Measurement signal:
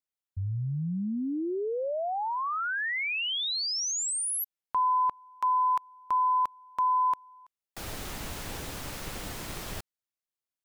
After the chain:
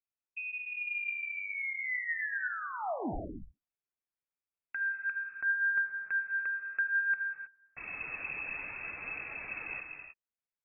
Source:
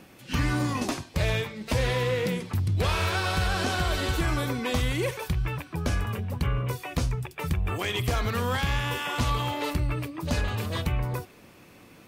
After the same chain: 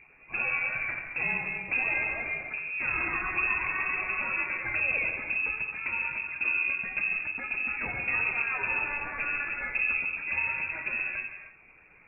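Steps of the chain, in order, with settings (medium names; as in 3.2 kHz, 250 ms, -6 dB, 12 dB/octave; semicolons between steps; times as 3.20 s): flange 0.6 Hz, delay 0.3 ms, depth 4.5 ms, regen +24%; gated-style reverb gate 340 ms flat, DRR 3 dB; frequency inversion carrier 2.6 kHz; trim -2.5 dB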